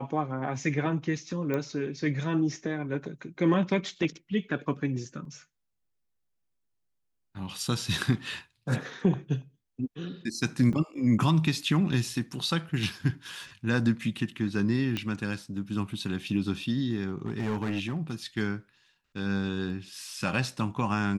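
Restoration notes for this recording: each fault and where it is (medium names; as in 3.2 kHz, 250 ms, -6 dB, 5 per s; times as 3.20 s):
1.54 s: pop -18 dBFS
5.25 s: dropout 2.7 ms
10.73 s: dropout 3.4 ms
14.97 s: pop -17 dBFS
17.07–18.13 s: clipped -25.5 dBFS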